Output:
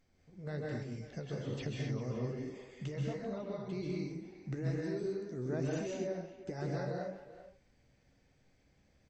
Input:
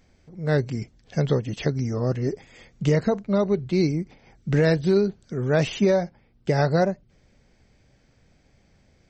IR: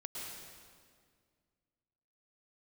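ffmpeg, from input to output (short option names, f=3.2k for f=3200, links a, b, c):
-filter_complex "[0:a]asettb=1/sr,asplit=3[a][b][c];[a]atrim=end=3.984[d];[b]atrim=start=3.98:end=6.61,asetpts=PTS-STARTPTS,afade=t=in:d=0.004:c=qsin,afade=t=out:st=2.626:d=0.004:c=qsin,equalizer=f=315:t=o:w=0.33:g=10,equalizer=f=3.15k:t=o:w=0.33:g=-11,equalizer=f=6.3k:t=o:w=0.33:g=6[e];[c]atrim=start=6.606[f];[d][e]acrossfade=d=0.004:c1=hsin:c2=qsin[g];[g][f]acrossfade=d=0.004:c1=qsin:c2=hsin,acompressor=threshold=-25dB:ratio=6,flanger=delay=6.5:depth=9.9:regen=49:speed=1.2:shape=triangular,asplit=2[h][i];[i]adelay=390,highpass=300,lowpass=3.4k,asoftclip=type=hard:threshold=-27.5dB,volume=-13dB[j];[h][j]amix=inputs=2:normalize=0[k];[1:a]atrim=start_sample=2205,afade=t=out:st=0.27:d=0.01,atrim=end_sample=12348,asetrate=35721,aresample=44100[l];[k][l]afir=irnorm=-1:irlink=0,volume=-4.5dB"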